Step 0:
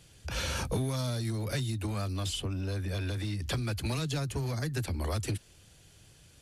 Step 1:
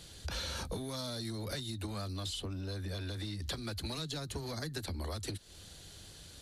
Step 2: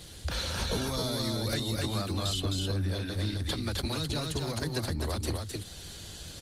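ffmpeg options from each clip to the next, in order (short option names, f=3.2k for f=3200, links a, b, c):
-af "equalizer=f=125:t=o:w=0.33:g=-10,equalizer=f=2.5k:t=o:w=0.33:g=-5,equalizer=f=4k:t=o:w=0.33:g=9,acompressor=threshold=-43dB:ratio=5,volume=5.5dB"
-af "aecho=1:1:260:0.708,volume=6.5dB" -ar 48000 -c:a libopus -b:a 20k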